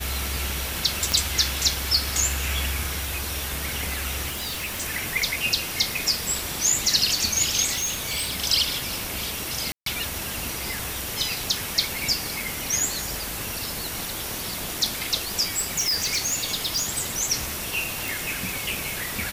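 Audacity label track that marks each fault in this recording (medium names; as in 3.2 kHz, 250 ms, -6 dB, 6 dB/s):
1.120000	1.120000	pop
4.290000	4.820000	clipped -26.5 dBFS
7.740000	8.380000	clipped -22.5 dBFS
9.720000	9.860000	dropout 143 ms
15.560000	16.860000	clipped -20 dBFS
18.080000	18.080000	pop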